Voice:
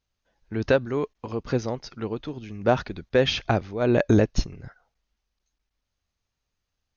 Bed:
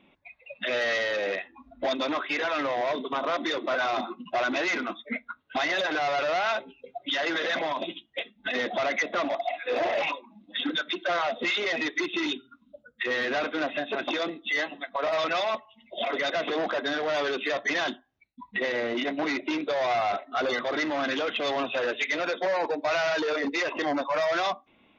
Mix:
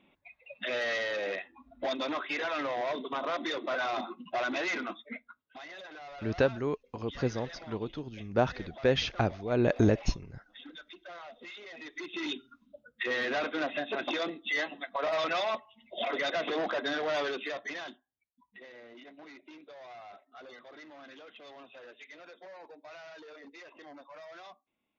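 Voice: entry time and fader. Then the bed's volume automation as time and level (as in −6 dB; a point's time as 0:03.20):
5.70 s, −5.5 dB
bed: 0:04.94 −5 dB
0:05.55 −19.5 dB
0:11.71 −19.5 dB
0:12.38 −3.5 dB
0:17.18 −3.5 dB
0:18.44 −22.5 dB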